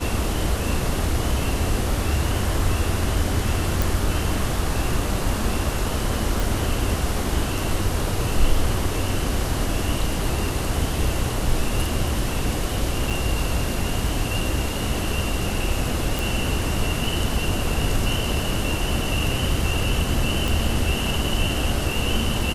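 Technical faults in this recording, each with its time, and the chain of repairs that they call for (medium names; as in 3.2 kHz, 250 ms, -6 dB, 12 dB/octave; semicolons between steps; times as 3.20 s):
3.82 s: pop
6.40 s: pop
13.10–13.11 s: dropout 6.1 ms
16.19 s: pop
20.48 s: pop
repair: de-click; interpolate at 13.10 s, 6.1 ms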